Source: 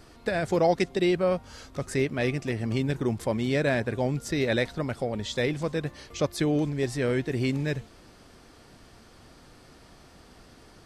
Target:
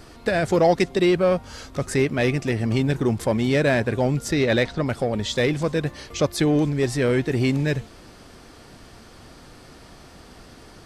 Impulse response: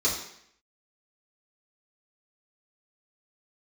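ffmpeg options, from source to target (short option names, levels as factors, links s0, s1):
-filter_complex "[0:a]asettb=1/sr,asplit=3[s0][s1][s2];[s0]atrim=end=4.334[s3];[s1]atrim=start=4.33:end=4.86,asetpts=PTS-STARTPTS,afade=t=in:d=0.004:c=qsin,afade=t=out:st=0.526:d=0.004:c=qsin,lowpass=6500[s4];[s2]atrim=start=4.856[s5];[s3][s4]acrossfade=d=0.004:c1=hsin:c2=qsin[s6];[s6][s5]acrossfade=d=0.004:c1=qsin:c2=hsin,asplit=2[s7][s8];[s8]asoftclip=type=hard:threshold=0.0473,volume=0.447[s9];[s7][s9]amix=inputs=2:normalize=0,volume=1.5"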